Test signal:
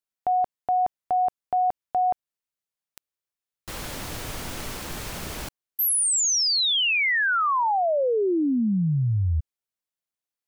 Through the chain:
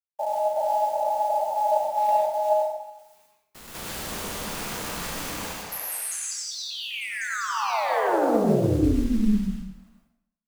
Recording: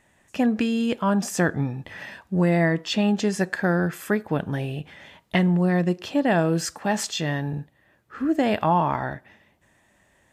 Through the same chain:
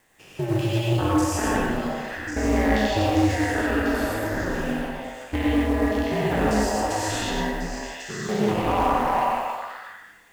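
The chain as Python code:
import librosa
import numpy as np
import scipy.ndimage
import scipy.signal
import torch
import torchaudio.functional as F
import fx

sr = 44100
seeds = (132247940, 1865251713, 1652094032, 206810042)

y = fx.spec_steps(x, sr, hold_ms=200)
y = fx.highpass(y, sr, hz=63.0, slope=6)
y = fx.high_shelf(y, sr, hz=9500.0, db=5.0)
y = fx.hum_notches(y, sr, base_hz=60, count=10)
y = y * np.sin(2.0 * np.pi * 110.0 * np.arange(len(y)) / sr)
y = fx.echo_stepped(y, sr, ms=365, hz=770.0, octaves=1.4, feedback_pct=70, wet_db=0)
y = np.clip(y, -10.0 ** (-20.5 / 20.0), 10.0 ** (-20.5 / 20.0))
y = fx.quant_companded(y, sr, bits=6)
y = fx.rev_plate(y, sr, seeds[0], rt60_s=0.77, hf_ratio=0.9, predelay_ms=80, drr_db=-1.5)
y = fx.doppler_dist(y, sr, depth_ms=0.12)
y = F.gain(torch.from_numpy(y), 2.5).numpy()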